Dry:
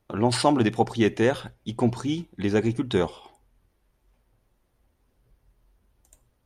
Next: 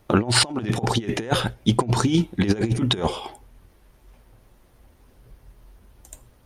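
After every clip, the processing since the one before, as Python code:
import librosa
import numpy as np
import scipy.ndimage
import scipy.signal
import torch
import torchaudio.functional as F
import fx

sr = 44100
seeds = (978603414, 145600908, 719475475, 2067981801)

y = fx.over_compress(x, sr, threshold_db=-28.0, ratio=-0.5)
y = y * librosa.db_to_amplitude(8.0)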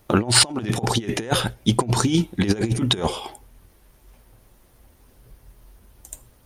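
y = fx.high_shelf(x, sr, hz=6000.0, db=8.5)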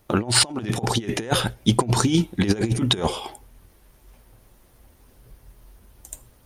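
y = fx.rider(x, sr, range_db=10, speed_s=2.0)
y = y * librosa.db_to_amplitude(-1.0)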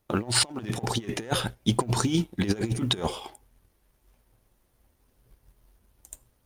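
y = fx.law_mismatch(x, sr, coded='A')
y = y * librosa.db_to_amplitude(-5.0)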